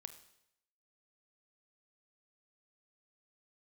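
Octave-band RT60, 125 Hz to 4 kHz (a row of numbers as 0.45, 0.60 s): 0.75, 0.75, 0.80, 0.75, 0.80, 0.75 s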